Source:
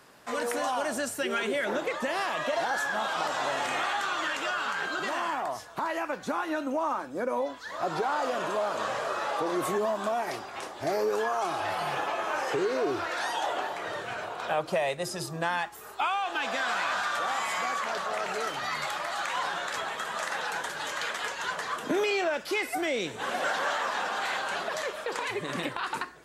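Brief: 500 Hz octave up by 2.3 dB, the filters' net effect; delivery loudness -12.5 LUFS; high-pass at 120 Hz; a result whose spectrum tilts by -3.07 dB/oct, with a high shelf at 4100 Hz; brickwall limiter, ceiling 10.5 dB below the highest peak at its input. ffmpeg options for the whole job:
-af "highpass=120,equalizer=f=500:t=o:g=3,highshelf=f=4.1k:g=-3.5,volume=21.5dB,alimiter=limit=-4dB:level=0:latency=1"

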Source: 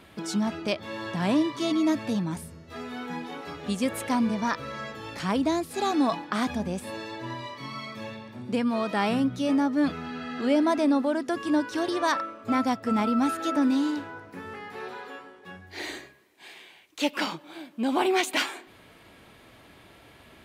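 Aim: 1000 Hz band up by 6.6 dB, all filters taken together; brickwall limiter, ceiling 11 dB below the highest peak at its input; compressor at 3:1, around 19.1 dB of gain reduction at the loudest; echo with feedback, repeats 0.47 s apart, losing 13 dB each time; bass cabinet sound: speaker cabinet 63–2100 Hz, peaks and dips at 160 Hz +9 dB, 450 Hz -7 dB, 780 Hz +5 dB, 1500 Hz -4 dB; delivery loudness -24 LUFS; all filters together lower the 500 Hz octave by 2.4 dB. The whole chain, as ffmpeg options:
-af "equalizer=f=500:t=o:g=-6.5,equalizer=f=1k:t=o:g=8.5,acompressor=threshold=-44dB:ratio=3,alimiter=level_in=9.5dB:limit=-24dB:level=0:latency=1,volume=-9.5dB,highpass=f=63:w=0.5412,highpass=f=63:w=1.3066,equalizer=f=160:t=q:w=4:g=9,equalizer=f=450:t=q:w=4:g=-7,equalizer=f=780:t=q:w=4:g=5,equalizer=f=1.5k:t=q:w=4:g=-4,lowpass=f=2.1k:w=0.5412,lowpass=f=2.1k:w=1.3066,aecho=1:1:470|940|1410:0.224|0.0493|0.0108,volume=19.5dB"

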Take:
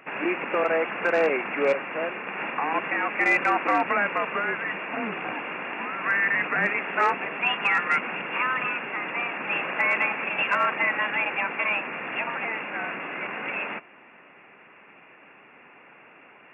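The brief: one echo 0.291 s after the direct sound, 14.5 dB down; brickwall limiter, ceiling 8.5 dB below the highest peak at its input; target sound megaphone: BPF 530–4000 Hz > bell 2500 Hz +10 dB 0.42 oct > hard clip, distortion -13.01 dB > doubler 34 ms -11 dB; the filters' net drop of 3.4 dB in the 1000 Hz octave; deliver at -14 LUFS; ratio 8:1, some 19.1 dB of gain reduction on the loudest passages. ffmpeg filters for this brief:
-filter_complex "[0:a]equalizer=f=1k:t=o:g=-4.5,acompressor=threshold=-40dB:ratio=8,alimiter=level_in=11dB:limit=-24dB:level=0:latency=1,volume=-11dB,highpass=530,lowpass=4k,equalizer=f=2.5k:t=o:w=0.42:g=10,aecho=1:1:291:0.188,asoftclip=type=hard:threshold=-37dB,asplit=2[a][b];[b]adelay=34,volume=-11dB[c];[a][c]amix=inputs=2:normalize=0,volume=25.5dB"

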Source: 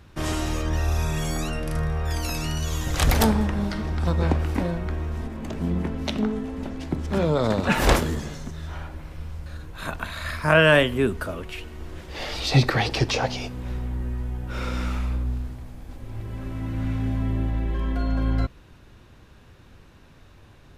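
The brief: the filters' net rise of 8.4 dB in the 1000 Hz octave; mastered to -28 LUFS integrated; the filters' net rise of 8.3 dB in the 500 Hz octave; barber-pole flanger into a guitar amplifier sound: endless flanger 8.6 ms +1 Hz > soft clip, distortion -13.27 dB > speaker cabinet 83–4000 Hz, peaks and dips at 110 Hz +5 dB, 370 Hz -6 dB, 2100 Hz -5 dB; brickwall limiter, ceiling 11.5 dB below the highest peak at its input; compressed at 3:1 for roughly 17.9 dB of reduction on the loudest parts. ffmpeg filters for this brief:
-filter_complex "[0:a]equalizer=f=500:t=o:g=9,equalizer=f=1k:t=o:g=8,acompressor=threshold=-31dB:ratio=3,alimiter=level_in=1dB:limit=-24dB:level=0:latency=1,volume=-1dB,asplit=2[a][b];[b]adelay=8.6,afreqshift=1[c];[a][c]amix=inputs=2:normalize=1,asoftclip=threshold=-34.5dB,highpass=83,equalizer=f=110:t=q:w=4:g=5,equalizer=f=370:t=q:w=4:g=-6,equalizer=f=2.1k:t=q:w=4:g=-5,lowpass=f=4k:w=0.5412,lowpass=f=4k:w=1.3066,volume=14.5dB"

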